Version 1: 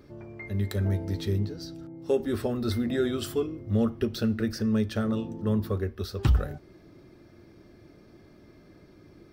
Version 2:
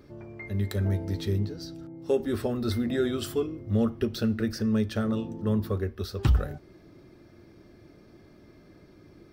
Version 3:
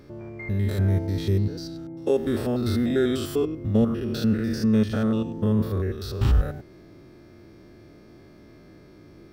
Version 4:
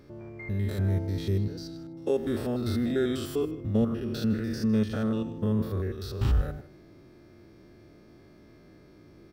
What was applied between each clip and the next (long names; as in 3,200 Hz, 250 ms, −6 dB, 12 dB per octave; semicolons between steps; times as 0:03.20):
no processing that can be heard
spectrum averaged block by block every 100 ms; level +5.5 dB
single-tap delay 157 ms −18 dB; level −4.5 dB